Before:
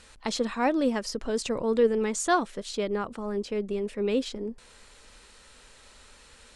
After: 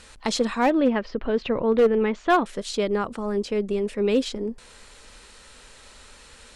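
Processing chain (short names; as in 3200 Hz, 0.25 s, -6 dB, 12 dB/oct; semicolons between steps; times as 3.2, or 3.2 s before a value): 0.7–2.46 LPF 3200 Hz 24 dB/oct; hard clip -17.5 dBFS, distortion -20 dB; gain +5 dB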